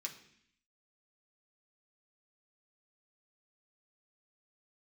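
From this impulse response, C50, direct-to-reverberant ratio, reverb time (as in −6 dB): 10.5 dB, 0.0 dB, 0.65 s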